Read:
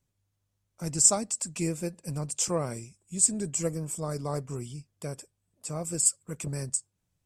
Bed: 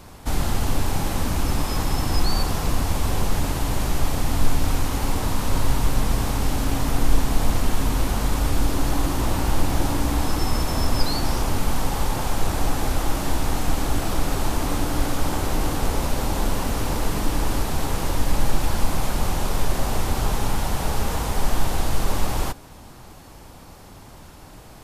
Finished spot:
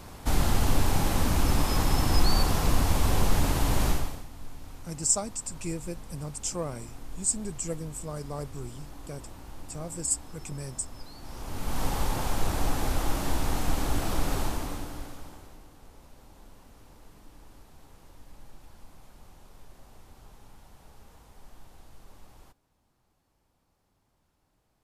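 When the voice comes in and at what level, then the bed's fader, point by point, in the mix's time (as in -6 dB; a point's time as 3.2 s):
4.05 s, -4.0 dB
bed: 3.9 s -1.5 dB
4.29 s -23 dB
11.16 s -23 dB
11.84 s -5 dB
14.39 s -5 dB
15.67 s -29.5 dB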